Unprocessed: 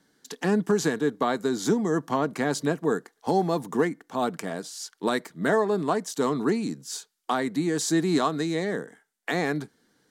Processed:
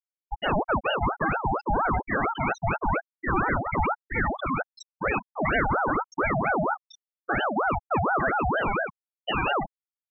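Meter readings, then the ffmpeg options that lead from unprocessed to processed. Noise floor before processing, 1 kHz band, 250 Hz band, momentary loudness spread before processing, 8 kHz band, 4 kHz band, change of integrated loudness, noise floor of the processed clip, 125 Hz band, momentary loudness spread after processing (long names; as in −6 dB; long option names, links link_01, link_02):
−72 dBFS, +5.0 dB, −5.5 dB, 11 LU, below −20 dB, −1.5 dB, 0.0 dB, below −85 dBFS, +1.5 dB, 6 LU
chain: -filter_complex "[0:a]asplit=2[link_01][link_02];[link_02]highpass=frequency=720:poles=1,volume=36dB,asoftclip=type=tanh:threshold=-12dB[link_03];[link_01][link_03]amix=inputs=2:normalize=0,lowpass=frequency=7300:poles=1,volume=-6dB,afftfilt=real='re*gte(hypot(re,im),0.398)':imag='im*gte(hypot(re,im),0.398)':win_size=1024:overlap=0.75,aeval=exprs='val(0)*sin(2*PI*770*n/s+770*0.5/4.3*sin(2*PI*4.3*n/s))':channel_layout=same,volume=-2dB"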